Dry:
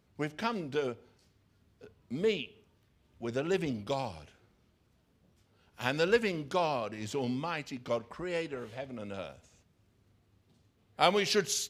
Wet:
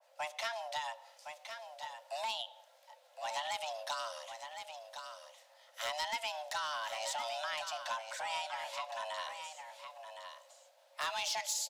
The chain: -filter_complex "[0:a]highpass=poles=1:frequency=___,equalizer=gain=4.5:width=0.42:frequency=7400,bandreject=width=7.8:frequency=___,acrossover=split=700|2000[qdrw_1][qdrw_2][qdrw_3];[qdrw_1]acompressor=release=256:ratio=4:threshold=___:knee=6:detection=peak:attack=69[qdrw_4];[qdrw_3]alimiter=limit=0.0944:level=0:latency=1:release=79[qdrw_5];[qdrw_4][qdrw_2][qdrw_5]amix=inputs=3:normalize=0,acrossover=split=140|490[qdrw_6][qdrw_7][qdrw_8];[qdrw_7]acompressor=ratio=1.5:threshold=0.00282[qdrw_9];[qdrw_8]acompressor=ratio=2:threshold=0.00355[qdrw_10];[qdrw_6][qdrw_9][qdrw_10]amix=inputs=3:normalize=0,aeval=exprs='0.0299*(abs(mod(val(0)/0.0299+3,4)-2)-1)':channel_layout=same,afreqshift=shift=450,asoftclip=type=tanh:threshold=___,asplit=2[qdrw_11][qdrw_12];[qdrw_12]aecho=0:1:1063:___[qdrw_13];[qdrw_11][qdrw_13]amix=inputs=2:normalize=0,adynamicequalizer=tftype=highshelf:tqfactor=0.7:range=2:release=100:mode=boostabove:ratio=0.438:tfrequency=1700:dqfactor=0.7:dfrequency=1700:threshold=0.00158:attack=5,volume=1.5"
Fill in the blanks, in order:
97, 730, 0.00794, 0.02, 0.398